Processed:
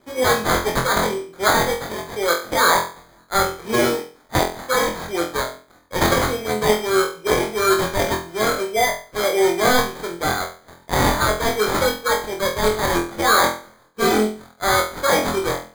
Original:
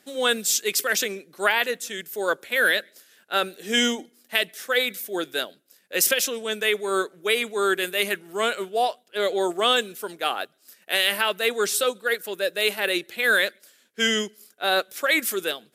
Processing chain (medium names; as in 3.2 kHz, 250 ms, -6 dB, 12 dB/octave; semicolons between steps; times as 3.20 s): sample-and-hold 16×; flutter echo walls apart 4 m, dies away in 0.38 s; trim +2.5 dB